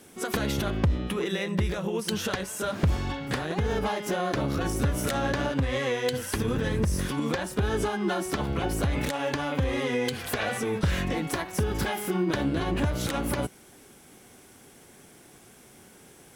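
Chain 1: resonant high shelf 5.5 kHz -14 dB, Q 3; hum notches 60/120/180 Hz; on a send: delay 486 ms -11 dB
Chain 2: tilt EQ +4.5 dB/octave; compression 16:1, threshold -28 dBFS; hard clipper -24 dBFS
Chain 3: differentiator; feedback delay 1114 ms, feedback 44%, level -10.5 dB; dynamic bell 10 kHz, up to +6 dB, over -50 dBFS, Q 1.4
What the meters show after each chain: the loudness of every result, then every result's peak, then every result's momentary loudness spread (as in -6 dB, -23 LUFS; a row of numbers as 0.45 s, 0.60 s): -27.5 LUFS, -32.5 LUFS, -35.5 LUFS; -10.5 dBFS, -24.0 dBFS, -10.5 dBFS; 3 LU, 9 LU, 17 LU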